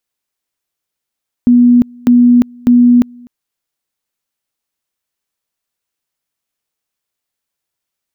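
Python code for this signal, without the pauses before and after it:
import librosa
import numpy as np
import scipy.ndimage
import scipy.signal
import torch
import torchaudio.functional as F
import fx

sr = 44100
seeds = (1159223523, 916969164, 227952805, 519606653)

y = fx.two_level_tone(sr, hz=243.0, level_db=-3.5, drop_db=29.0, high_s=0.35, low_s=0.25, rounds=3)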